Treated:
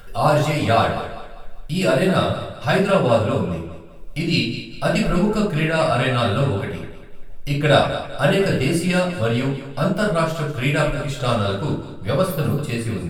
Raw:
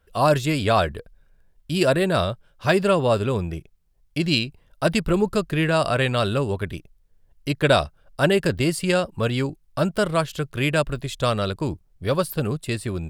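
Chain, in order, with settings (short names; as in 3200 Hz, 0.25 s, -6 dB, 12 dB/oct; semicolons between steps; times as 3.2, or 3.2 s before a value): upward compressor, threshold -29 dBFS; thinning echo 0.198 s, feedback 40%, high-pass 160 Hz, level -11.5 dB; reverb RT60 0.40 s, pre-delay 6 ms, DRR -4 dB; gain -5 dB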